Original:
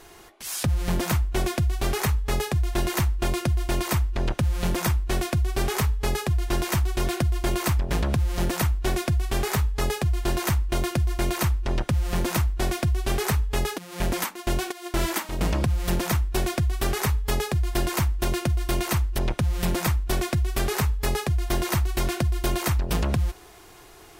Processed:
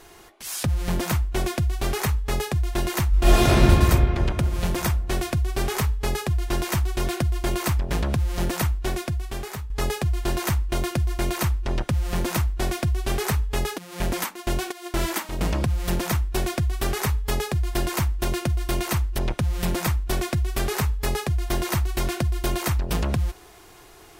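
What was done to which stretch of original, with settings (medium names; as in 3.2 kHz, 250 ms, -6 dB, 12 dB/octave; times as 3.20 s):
3.09–3.62 s: reverb throw, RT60 2.9 s, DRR -11 dB
8.65–9.70 s: fade out, to -12 dB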